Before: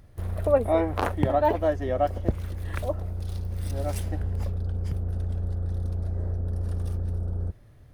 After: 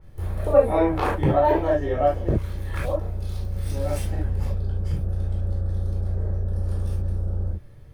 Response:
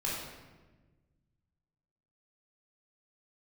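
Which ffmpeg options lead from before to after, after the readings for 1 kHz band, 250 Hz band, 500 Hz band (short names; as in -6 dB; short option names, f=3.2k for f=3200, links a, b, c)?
+3.0 dB, +4.0 dB, +3.5 dB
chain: -filter_complex "[1:a]atrim=start_sample=2205,atrim=end_sample=3528[a];[0:a][a]afir=irnorm=-1:irlink=0,adynamicequalizer=threshold=0.00891:dfrequency=3500:dqfactor=0.7:tfrequency=3500:tqfactor=0.7:attack=5:release=100:ratio=0.375:range=1.5:mode=cutabove:tftype=highshelf"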